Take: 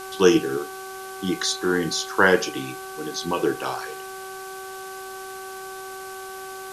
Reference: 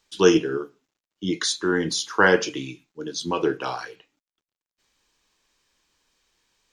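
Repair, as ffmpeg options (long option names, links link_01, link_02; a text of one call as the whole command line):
ffmpeg -i in.wav -af "bandreject=frequency=381.8:width_type=h:width=4,bandreject=frequency=763.6:width_type=h:width=4,bandreject=frequency=1145.4:width_type=h:width=4,bandreject=frequency=1527.2:width_type=h:width=4,afwtdn=0.0079,asetnsamples=nb_out_samples=441:pad=0,asendcmd='3.88 volume volume -3.5dB',volume=0dB" out.wav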